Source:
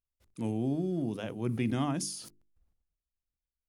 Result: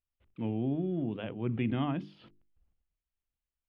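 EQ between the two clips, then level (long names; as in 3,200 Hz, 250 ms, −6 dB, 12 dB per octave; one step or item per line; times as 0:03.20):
low-pass with resonance 3,100 Hz, resonance Q 2.9
high-frequency loss of the air 500 metres
0.0 dB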